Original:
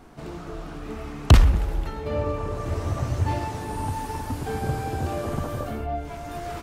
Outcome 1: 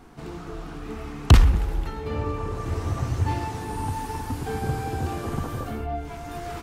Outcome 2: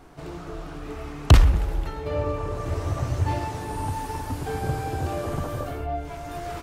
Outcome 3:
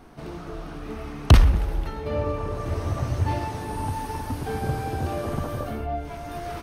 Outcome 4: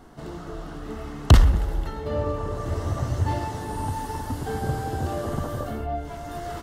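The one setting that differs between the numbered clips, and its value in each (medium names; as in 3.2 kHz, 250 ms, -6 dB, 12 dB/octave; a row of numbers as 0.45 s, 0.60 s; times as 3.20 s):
band-stop, frequency: 600 Hz, 220 Hz, 7.3 kHz, 2.4 kHz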